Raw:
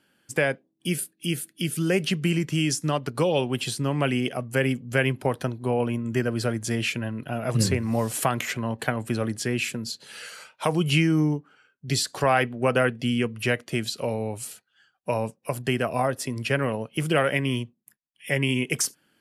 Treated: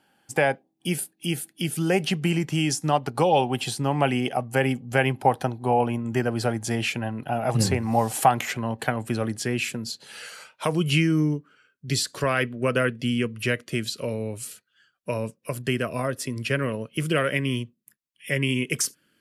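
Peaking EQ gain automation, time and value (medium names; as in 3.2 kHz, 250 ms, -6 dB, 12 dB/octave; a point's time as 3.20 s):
peaking EQ 800 Hz 0.35 oct
8.21 s +14.5 dB
8.67 s +4 dB
10.32 s +4 dB
10.80 s -8 dB
11.20 s -14.5 dB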